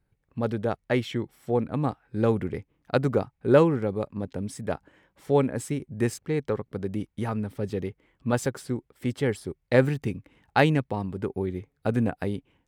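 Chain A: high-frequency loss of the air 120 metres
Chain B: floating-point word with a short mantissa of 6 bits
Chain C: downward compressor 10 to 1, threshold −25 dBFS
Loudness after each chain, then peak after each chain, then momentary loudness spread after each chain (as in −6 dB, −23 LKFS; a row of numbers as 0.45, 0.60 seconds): −28.0, −27.5, −33.0 LKFS; −6.5, −6.0, −13.0 dBFS; 11, 11, 5 LU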